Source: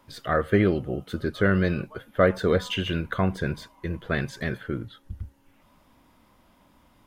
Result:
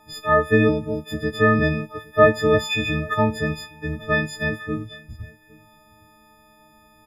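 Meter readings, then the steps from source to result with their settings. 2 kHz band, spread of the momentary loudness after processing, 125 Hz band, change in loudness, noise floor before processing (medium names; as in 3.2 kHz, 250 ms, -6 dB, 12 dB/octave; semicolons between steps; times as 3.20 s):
+7.5 dB, 14 LU, +2.5 dB, +5.0 dB, -61 dBFS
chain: partials quantised in pitch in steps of 6 st; treble shelf 3.5 kHz -11.5 dB; on a send: delay 812 ms -23.5 dB; on the sum: trim +3 dB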